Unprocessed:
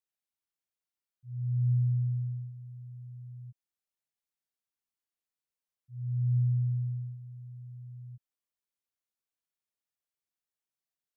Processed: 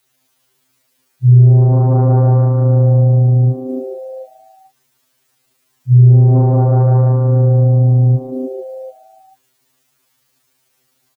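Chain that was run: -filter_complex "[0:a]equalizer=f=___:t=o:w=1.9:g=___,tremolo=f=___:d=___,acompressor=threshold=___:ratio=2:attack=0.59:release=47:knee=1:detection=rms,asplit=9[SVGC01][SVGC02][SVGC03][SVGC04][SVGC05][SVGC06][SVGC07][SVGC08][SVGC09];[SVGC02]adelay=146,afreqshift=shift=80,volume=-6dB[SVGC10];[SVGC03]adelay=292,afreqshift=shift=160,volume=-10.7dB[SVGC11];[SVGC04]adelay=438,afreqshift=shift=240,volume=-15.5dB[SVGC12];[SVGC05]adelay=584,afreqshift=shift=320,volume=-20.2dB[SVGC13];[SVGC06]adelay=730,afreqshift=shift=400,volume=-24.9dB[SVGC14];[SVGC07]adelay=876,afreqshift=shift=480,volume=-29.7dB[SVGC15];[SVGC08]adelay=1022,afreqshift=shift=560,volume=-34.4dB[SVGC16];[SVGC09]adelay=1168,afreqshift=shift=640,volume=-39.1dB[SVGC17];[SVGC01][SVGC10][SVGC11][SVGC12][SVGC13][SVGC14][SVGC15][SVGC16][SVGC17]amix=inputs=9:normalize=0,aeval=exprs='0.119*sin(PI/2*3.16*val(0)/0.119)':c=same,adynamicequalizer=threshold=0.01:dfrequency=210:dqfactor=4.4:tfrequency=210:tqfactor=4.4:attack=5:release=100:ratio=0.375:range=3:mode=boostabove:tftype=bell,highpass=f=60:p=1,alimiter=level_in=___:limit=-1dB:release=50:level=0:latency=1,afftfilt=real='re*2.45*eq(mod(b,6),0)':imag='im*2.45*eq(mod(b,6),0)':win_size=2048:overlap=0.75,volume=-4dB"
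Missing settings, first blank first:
160, 7.5, 27, 0.75, -29dB, 24dB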